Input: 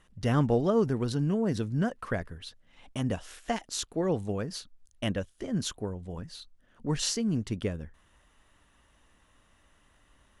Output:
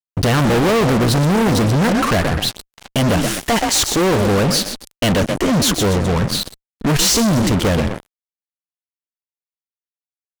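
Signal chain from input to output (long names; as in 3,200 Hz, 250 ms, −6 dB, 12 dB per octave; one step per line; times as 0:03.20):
echo with shifted repeats 127 ms, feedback 32%, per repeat +39 Hz, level −12 dB
fuzz pedal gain 45 dB, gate −47 dBFS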